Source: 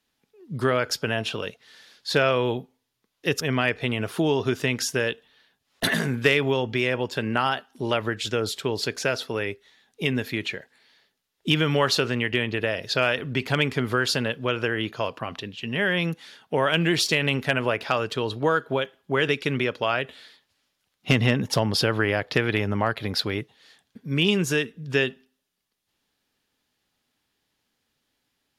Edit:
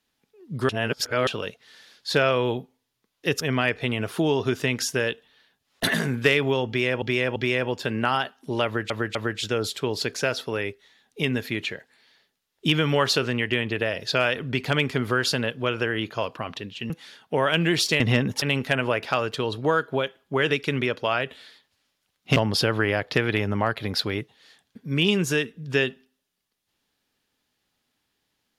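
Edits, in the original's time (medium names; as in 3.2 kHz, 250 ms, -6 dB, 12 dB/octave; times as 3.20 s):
0.69–1.27 s: reverse
6.68–7.02 s: loop, 3 plays
7.97–8.22 s: loop, 3 plays
15.72–16.10 s: delete
21.14–21.56 s: move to 17.20 s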